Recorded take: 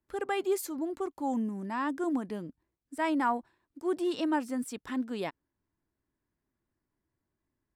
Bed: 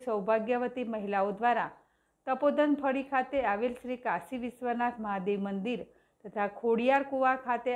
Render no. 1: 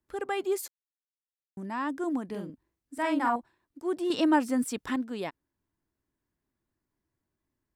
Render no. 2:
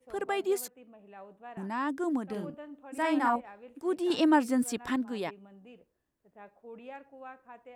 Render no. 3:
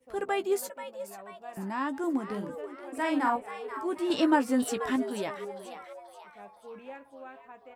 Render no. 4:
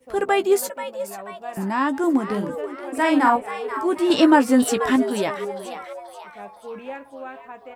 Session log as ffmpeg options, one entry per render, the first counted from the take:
ffmpeg -i in.wav -filter_complex "[0:a]asettb=1/sr,asplit=3[link_01][link_02][link_03];[link_01]atrim=end=2.274[link_04];[link_02]atrim=start=2.27:end=3.36,asetpts=PTS-STARTPTS,afade=type=in:duration=0.004:curve=qsin,afade=type=out:start_time=1.086:duration=0.004:curve=qsin,asplit=2[link_05][link_06];[link_06]adelay=45,volume=-4dB[link_07];[link_05][link_07]amix=inputs=2:normalize=0,atrim=end_sample=48069[link_08];[link_03]atrim=start=3.356[link_09];[link_04][link_08]acrossfade=duration=0.004:curve1=hsin:curve2=qsin[link_10];[link_10][link_09]acrossfade=duration=0.004:curve1=qsin:curve2=hsin,asettb=1/sr,asplit=3[link_11][link_12][link_13];[link_11]atrim=end=4.104[link_14];[link_12]atrim=start=4.1:end=4.96,asetpts=PTS-STARTPTS,afade=type=in:duration=0.004:curve=qsin,afade=type=out:start_time=0.856:duration=0.004:curve=qsin,acontrast=51[link_15];[link_13]atrim=start=4.956[link_16];[link_14][link_15]acrossfade=duration=0.004:curve1=hsin:curve2=qsin[link_17];[link_17][link_16]acrossfade=duration=0.004:curve1=qsin:curve2=hsin,asplit=3[link_18][link_19][link_20];[link_18]atrim=end=0.68,asetpts=PTS-STARTPTS,afade=type=out:start_time=0.676:duration=0.004:curve=hsin[link_21];[link_19]atrim=start=0.68:end=1.57,asetpts=PTS-STARTPTS,volume=0[link_22];[link_20]atrim=start=1.57,asetpts=PTS-STARTPTS,afade=type=in:duration=0.004:curve=hsin[link_23];[link_21][link_22][link_23]concat=n=3:v=0:a=1" out.wav
ffmpeg -i in.wav -i bed.wav -filter_complex "[1:a]volume=-19.5dB[link_01];[0:a][link_01]amix=inputs=2:normalize=0" out.wav
ffmpeg -i in.wav -filter_complex "[0:a]asplit=2[link_01][link_02];[link_02]adelay=15,volume=-9dB[link_03];[link_01][link_03]amix=inputs=2:normalize=0,asplit=6[link_04][link_05][link_06][link_07][link_08][link_09];[link_05]adelay=485,afreqshift=150,volume=-11.5dB[link_10];[link_06]adelay=970,afreqshift=300,volume=-18.4dB[link_11];[link_07]adelay=1455,afreqshift=450,volume=-25.4dB[link_12];[link_08]adelay=1940,afreqshift=600,volume=-32.3dB[link_13];[link_09]adelay=2425,afreqshift=750,volume=-39.2dB[link_14];[link_04][link_10][link_11][link_12][link_13][link_14]amix=inputs=6:normalize=0" out.wav
ffmpeg -i in.wav -af "volume=10dB,alimiter=limit=-3dB:level=0:latency=1" out.wav

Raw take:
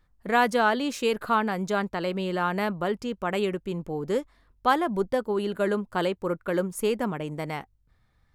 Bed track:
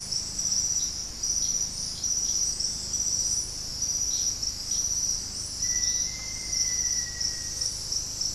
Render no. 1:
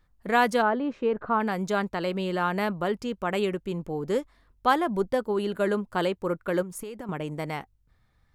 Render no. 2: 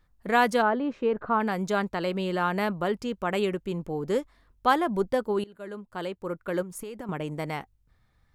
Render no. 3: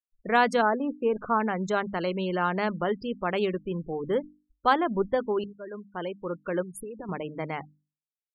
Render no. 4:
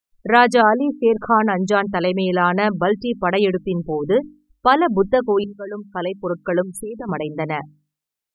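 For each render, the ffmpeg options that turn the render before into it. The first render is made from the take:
ffmpeg -i in.wav -filter_complex "[0:a]asplit=3[link_01][link_02][link_03];[link_01]afade=type=out:start_time=0.61:duration=0.02[link_04];[link_02]lowpass=1300,afade=type=in:start_time=0.61:duration=0.02,afade=type=out:start_time=1.39:duration=0.02[link_05];[link_03]afade=type=in:start_time=1.39:duration=0.02[link_06];[link_04][link_05][link_06]amix=inputs=3:normalize=0,asettb=1/sr,asplit=3[link_07][link_08][link_09];[link_07]atrim=end=6.624[link_10];[link_08]atrim=start=6.62:end=7.09,asetpts=PTS-STARTPTS,afade=type=in:duration=0.004:curve=qsin,afade=type=out:start_time=0.466:duration=0.004:curve=qsin,acompressor=threshold=-33dB:ratio=16:attack=3.2:release=140:knee=1:detection=peak[link_11];[link_09]atrim=start=7.086[link_12];[link_10][link_11]acrossfade=duration=0.004:curve1=hsin:curve2=qsin[link_13];[link_13][link_12]acrossfade=duration=0.004:curve1=qsin:curve2=hsin" out.wav
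ffmpeg -i in.wav -filter_complex "[0:a]asplit=2[link_01][link_02];[link_01]atrim=end=5.44,asetpts=PTS-STARTPTS,afade=type=out:start_time=5.436:duration=0.004:curve=hsin:silence=0.0668344[link_03];[link_02]atrim=start=5.44,asetpts=PTS-STARTPTS,afade=type=in:duration=1.54:silence=0.0668344[link_04];[link_03][link_04]concat=n=2:v=0:a=1" out.wav
ffmpeg -i in.wav -af "afftfilt=real='re*gte(hypot(re,im),0.0158)':imag='im*gte(hypot(re,im),0.0158)':win_size=1024:overlap=0.75,bandreject=frequency=50:width_type=h:width=6,bandreject=frequency=100:width_type=h:width=6,bandreject=frequency=150:width_type=h:width=6,bandreject=frequency=200:width_type=h:width=6,bandreject=frequency=250:width_type=h:width=6,bandreject=frequency=300:width_type=h:width=6" out.wav
ffmpeg -i in.wav -af "volume=9.5dB,alimiter=limit=-2dB:level=0:latency=1" out.wav

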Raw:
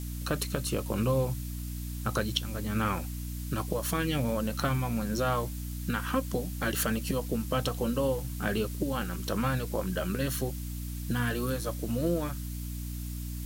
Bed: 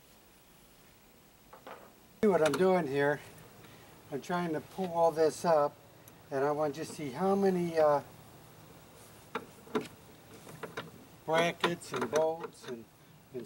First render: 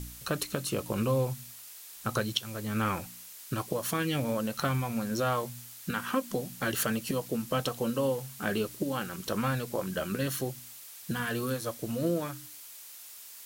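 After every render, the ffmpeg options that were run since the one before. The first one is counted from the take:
ffmpeg -i in.wav -af "bandreject=frequency=60:width_type=h:width=4,bandreject=frequency=120:width_type=h:width=4,bandreject=frequency=180:width_type=h:width=4,bandreject=frequency=240:width_type=h:width=4,bandreject=frequency=300:width_type=h:width=4" out.wav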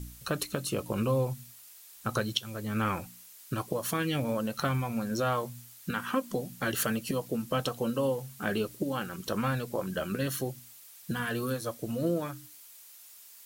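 ffmpeg -i in.wav -af "afftdn=noise_reduction=6:noise_floor=-48" out.wav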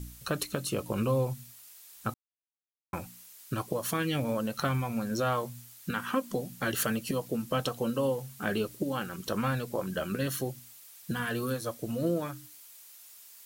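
ffmpeg -i in.wav -filter_complex "[0:a]asplit=3[link_01][link_02][link_03];[link_01]atrim=end=2.14,asetpts=PTS-STARTPTS,afade=type=out:start_time=2.136:duration=0.004:curve=hsin[link_04];[link_02]atrim=start=2.14:end=2.93,asetpts=PTS-STARTPTS,volume=0[link_05];[link_03]atrim=start=2.93,asetpts=PTS-STARTPTS,afade=type=in:duration=0.004:curve=hsin[link_06];[link_04][link_05][link_06]concat=n=3:v=0:a=1" out.wav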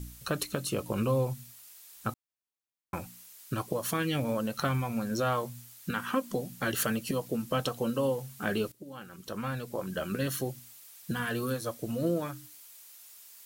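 ffmpeg -i in.wav -filter_complex "[0:a]asplit=2[link_01][link_02];[link_01]atrim=end=8.72,asetpts=PTS-STARTPTS,afade=type=out:start_time=8.716:duration=0.004:curve=hsin:silence=0.125893[link_03];[link_02]atrim=start=8.72,asetpts=PTS-STARTPTS,afade=type=in:duration=1.47:silence=0.125893[link_04];[link_03][link_04]concat=n=2:v=0:a=1" out.wav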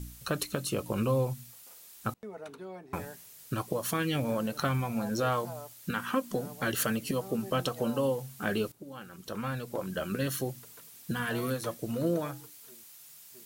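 ffmpeg -i in.wav -i bed.wav -filter_complex "[1:a]volume=-17dB[link_01];[0:a][link_01]amix=inputs=2:normalize=0" out.wav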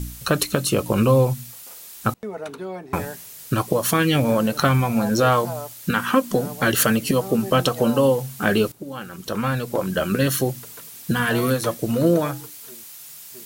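ffmpeg -i in.wav -af "volume=11.5dB" out.wav

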